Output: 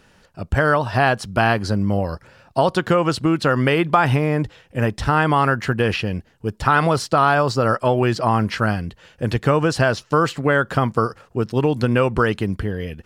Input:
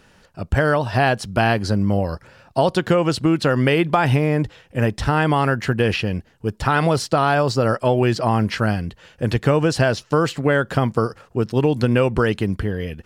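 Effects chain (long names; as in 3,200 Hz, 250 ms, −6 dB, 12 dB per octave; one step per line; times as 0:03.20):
dynamic equaliser 1,200 Hz, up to +6 dB, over −32 dBFS, Q 1.7
level −1 dB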